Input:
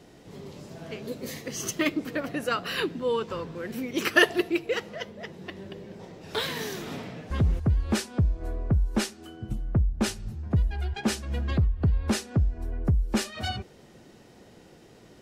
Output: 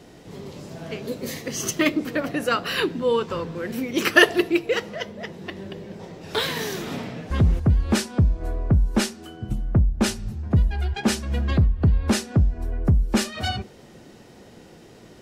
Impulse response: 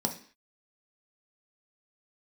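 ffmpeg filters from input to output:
-filter_complex "[0:a]asplit=2[a][b];[1:a]atrim=start_sample=2205,adelay=26[c];[b][c]afir=irnorm=-1:irlink=0,volume=-24.5dB[d];[a][d]amix=inputs=2:normalize=0,volume=5dB"

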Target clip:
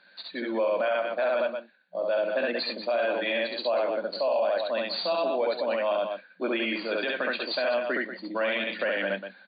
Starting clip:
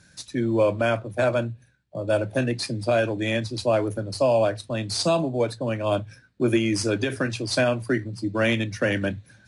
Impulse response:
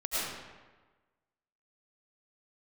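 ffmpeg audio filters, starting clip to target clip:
-af "lowshelf=f=440:t=q:w=1.5:g=-9,aecho=1:1:67.06|189.5:0.891|0.282,alimiter=limit=-18.5dB:level=0:latency=1:release=34,afftfilt=real='re*between(b*sr/4096,180,4700)':imag='im*between(b*sr/4096,180,4700)':win_size=4096:overlap=0.75"

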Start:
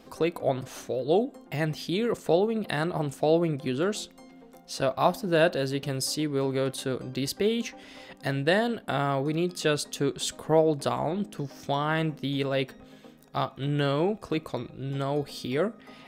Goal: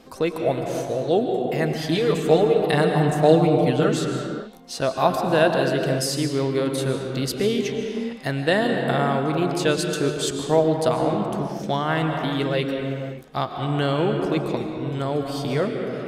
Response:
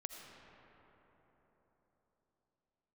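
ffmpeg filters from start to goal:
-filter_complex "[0:a]asettb=1/sr,asplit=3[a][b][c];[a]atrim=end=1.814[d];[b]atrim=start=1.81:end=3.89,asetpts=PTS-STARTPTS,afade=t=in:d=0.004:c=qsin,afade=t=out:st=2.076:d=0.004:c=qsin,aecho=1:1:6.7:0.97,atrim=end_sample=91728[e];[c]atrim=start=3.886[f];[d][e]acrossfade=d=0.004:c1=hsin:c2=qsin[g];[g][f]acrossfade=d=0.004:c1=qsin:c2=hsin[h];[1:a]atrim=start_sample=2205,afade=t=out:st=0.38:d=0.01,atrim=end_sample=17199,asetrate=25137,aresample=44100[i];[h][i]afir=irnorm=-1:irlink=0,volume=5dB"

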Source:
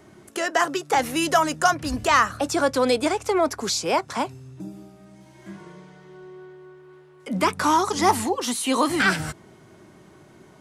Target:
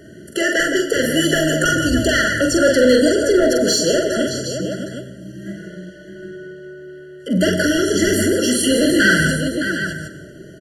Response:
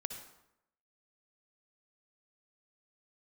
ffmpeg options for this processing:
-filter_complex "[0:a]aecho=1:1:44|115|167|614|762:0.631|0.112|0.335|0.282|0.266,asoftclip=type=tanh:threshold=-16dB,asplit=2[a][b];[1:a]atrim=start_sample=2205,asetrate=29988,aresample=44100[c];[b][c]afir=irnorm=-1:irlink=0,volume=-2dB[d];[a][d]amix=inputs=2:normalize=0,afftfilt=real='re*eq(mod(floor(b*sr/1024/680),2),0)':imag='im*eq(mod(floor(b*sr/1024/680),2),0)':win_size=1024:overlap=0.75,volume=4dB"

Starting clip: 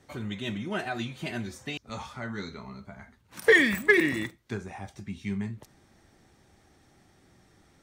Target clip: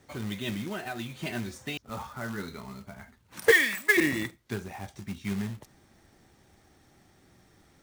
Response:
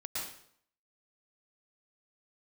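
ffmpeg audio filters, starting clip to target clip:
-filter_complex "[0:a]asettb=1/sr,asplit=3[a][b][c];[a]atrim=end=0.654[d];[b]atrim=start=0.65:end=1.23,asetpts=PTS-STARTPTS,afade=t=in:d=0.004:c=qsin,afade=t=out:st=0.576:d=0.004:c=qsin,acompressor=threshold=-32dB:ratio=5[e];[c]atrim=start=1.226[f];[d][e]acrossfade=d=0.004:c1=hsin:c2=qsin[g];[g][f]acrossfade=d=0.004:c1=qsin:c2=hsin,asettb=1/sr,asplit=3[h][i][j];[h]atrim=end=1.824[k];[i]atrim=start=1.82:end=2.48,asetpts=PTS-STARTPTS,afade=t=in:d=0.004:c=qsin,afade=t=out:st=0.656:d=0.004:c=qsin,highshelf=f=2k:t=q:w=1.5:g=-6.5[l];[j]atrim=start=2.476[m];[k][l]acrossfade=d=0.004:c1=hsin:c2=qsin[n];[n][m]acrossfade=d=0.004:c1=qsin:c2=hsin,acrusher=bits=3:mode=log:mix=0:aa=0.000001,asettb=1/sr,asplit=3[o][p][q];[o]atrim=end=3.514[r];[p]atrim=start=3.51:end=3.97,asetpts=PTS-STARTPTS,afade=t=in:d=0.004:c=qsin,afade=t=out:st=0.456:d=0.004:c=qsin,highpass=f=1.1k:p=1[s];[q]atrim=start=3.966[t];[r][s]acrossfade=d=0.004:c1=hsin:c2=qsin[u];[u][t]acrossfade=d=0.004:c1=qsin:c2=hsin"

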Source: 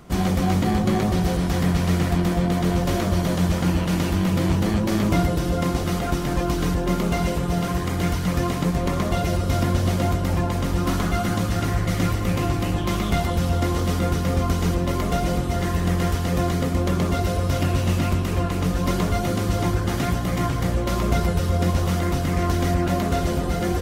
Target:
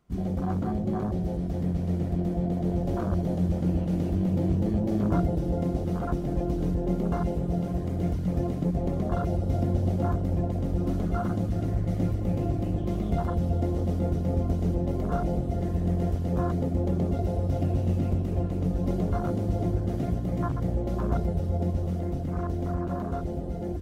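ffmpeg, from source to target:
-af "afwtdn=0.0794,dynaudnorm=f=250:g=21:m=3.5dB,volume=-7.5dB"

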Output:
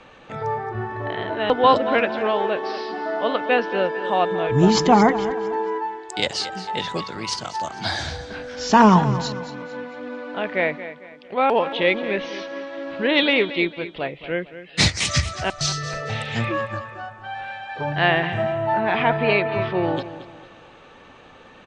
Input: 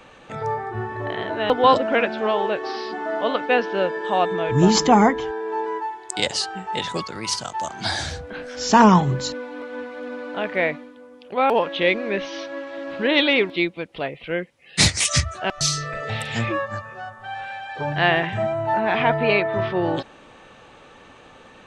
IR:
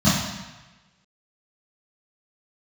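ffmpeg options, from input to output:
-af "lowpass=5.6k,aecho=1:1:225|450|675|900:0.211|0.0782|0.0289|0.0107"

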